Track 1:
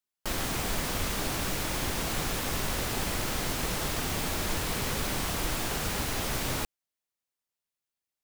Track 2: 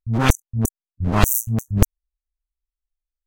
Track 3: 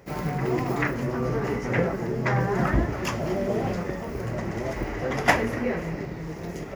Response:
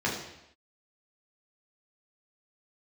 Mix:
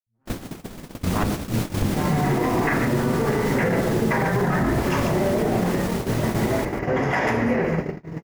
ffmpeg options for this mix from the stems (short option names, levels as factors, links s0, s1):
-filter_complex "[0:a]volume=1,asplit=2[s0][s1];[s1]volume=0.168[s2];[1:a]lowpass=2000,volume=0.335,afade=t=in:st=0.86:d=0.35:silence=0.281838,asplit=2[s3][s4];[s4]volume=0.224[s5];[2:a]adynamicequalizer=threshold=0.0141:dfrequency=1100:dqfactor=0.81:tfrequency=1100:tqfactor=0.81:attack=5:release=100:ratio=0.375:range=2:mode=boostabove:tftype=bell,adelay=1850,volume=0.631,asplit=3[s6][s7][s8];[s7]volume=0.376[s9];[s8]volume=0.562[s10];[s0][s6]amix=inputs=2:normalize=0,equalizer=f=220:w=0.46:g=13,acompressor=threshold=0.0562:ratio=5,volume=1[s11];[3:a]atrim=start_sample=2205[s12];[s5][s9]amix=inputs=2:normalize=0[s13];[s13][s12]afir=irnorm=-1:irlink=0[s14];[s2][s10]amix=inputs=2:normalize=0,aecho=0:1:142:1[s15];[s3][s11][s14][s15]amix=inputs=4:normalize=0,agate=range=0.0158:threshold=0.0562:ratio=16:detection=peak,dynaudnorm=f=190:g=3:m=1.88,alimiter=limit=0.237:level=0:latency=1:release=61"